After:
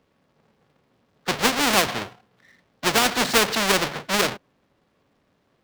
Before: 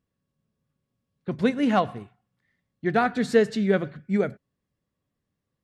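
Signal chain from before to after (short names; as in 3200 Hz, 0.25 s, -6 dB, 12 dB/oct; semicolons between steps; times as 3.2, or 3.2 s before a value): half-waves squared off; three-band isolator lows -13 dB, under 250 Hz, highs -13 dB, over 5200 Hz; spectral compressor 2:1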